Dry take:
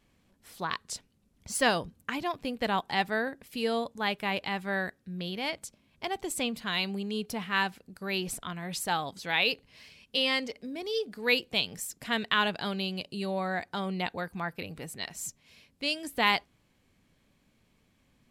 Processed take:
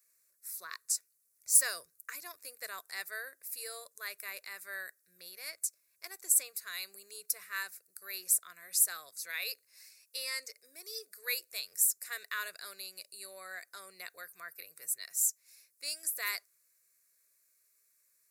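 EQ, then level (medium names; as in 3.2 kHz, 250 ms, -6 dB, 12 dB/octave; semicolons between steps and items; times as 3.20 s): differentiator; treble shelf 5.9 kHz +7.5 dB; static phaser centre 850 Hz, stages 6; +4.5 dB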